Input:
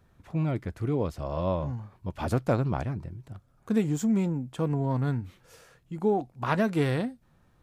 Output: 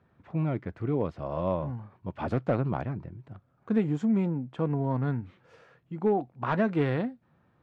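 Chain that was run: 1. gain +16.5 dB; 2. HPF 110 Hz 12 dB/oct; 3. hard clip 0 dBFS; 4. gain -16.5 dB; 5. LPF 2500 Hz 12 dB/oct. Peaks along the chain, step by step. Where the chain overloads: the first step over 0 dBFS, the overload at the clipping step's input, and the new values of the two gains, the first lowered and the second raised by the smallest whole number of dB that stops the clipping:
+4.5, +6.5, 0.0, -16.5, -16.0 dBFS; step 1, 6.5 dB; step 1 +9.5 dB, step 4 -9.5 dB

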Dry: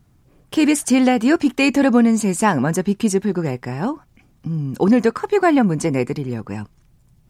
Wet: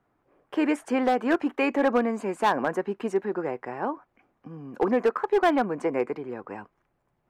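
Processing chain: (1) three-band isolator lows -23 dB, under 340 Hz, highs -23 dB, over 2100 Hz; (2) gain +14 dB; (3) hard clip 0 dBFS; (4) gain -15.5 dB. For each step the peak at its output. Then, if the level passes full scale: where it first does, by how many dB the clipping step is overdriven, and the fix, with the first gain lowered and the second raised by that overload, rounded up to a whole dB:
-6.5, +7.5, 0.0, -15.5 dBFS; step 2, 7.5 dB; step 2 +6 dB, step 4 -7.5 dB

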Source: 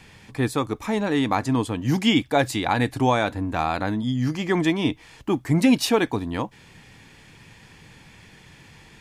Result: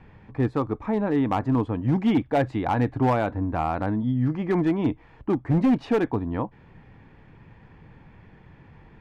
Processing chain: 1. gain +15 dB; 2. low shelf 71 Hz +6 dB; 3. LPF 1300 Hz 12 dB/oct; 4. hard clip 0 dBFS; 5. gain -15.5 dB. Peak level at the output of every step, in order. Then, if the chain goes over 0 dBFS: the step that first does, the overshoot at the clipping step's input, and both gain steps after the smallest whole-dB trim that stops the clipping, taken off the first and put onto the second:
+7.5, +8.0, +7.5, 0.0, -15.5 dBFS; step 1, 7.5 dB; step 1 +7 dB, step 5 -7.5 dB

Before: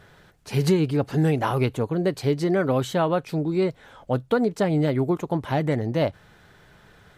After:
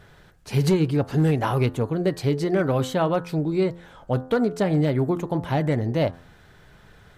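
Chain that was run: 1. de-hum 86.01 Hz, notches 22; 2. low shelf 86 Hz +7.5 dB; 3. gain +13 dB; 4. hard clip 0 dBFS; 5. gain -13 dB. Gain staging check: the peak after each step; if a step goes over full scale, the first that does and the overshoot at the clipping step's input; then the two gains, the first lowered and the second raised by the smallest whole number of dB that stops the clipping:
-10.0, -9.0, +4.0, 0.0, -13.0 dBFS; step 3, 4.0 dB; step 3 +9 dB, step 5 -9 dB

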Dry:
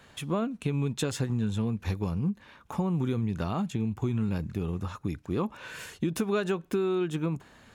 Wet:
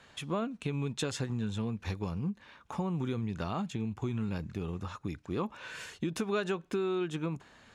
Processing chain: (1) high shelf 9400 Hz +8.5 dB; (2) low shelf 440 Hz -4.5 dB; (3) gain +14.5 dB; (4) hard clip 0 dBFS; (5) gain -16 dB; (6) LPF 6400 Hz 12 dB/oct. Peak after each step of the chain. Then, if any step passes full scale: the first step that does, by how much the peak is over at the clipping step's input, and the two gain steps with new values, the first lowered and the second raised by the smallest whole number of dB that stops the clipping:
-17.0, -18.5, -4.0, -4.0, -20.0, -20.0 dBFS; no overload

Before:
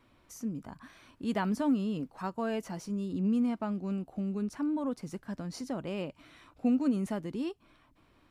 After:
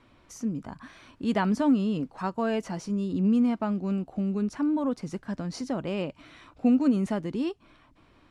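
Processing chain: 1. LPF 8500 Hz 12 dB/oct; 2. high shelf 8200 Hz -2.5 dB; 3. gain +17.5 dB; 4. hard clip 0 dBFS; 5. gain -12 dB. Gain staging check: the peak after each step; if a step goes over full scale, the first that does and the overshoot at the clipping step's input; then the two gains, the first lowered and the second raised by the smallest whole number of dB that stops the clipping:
-19.5, -19.5, -2.0, -2.0, -14.0 dBFS; no overload

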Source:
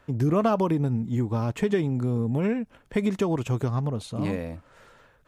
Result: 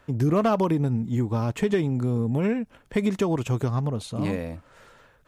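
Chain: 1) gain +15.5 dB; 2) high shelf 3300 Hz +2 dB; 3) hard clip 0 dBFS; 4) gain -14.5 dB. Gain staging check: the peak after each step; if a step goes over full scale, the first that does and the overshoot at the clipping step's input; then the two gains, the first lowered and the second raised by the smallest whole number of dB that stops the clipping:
+4.0, +4.0, 0.0, -14.5 dBFS; step 1, 4.0 dB; step 1 +11.5 dB, step 4 -10.5 dB

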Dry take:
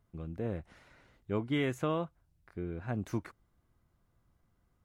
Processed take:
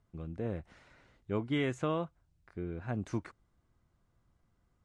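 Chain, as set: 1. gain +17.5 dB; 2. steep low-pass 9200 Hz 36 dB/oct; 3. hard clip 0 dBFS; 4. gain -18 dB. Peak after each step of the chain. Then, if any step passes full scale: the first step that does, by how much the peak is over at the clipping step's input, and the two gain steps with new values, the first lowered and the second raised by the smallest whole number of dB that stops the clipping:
-4.0, -4.0, -4.0, -22.0 dBFS; no overload

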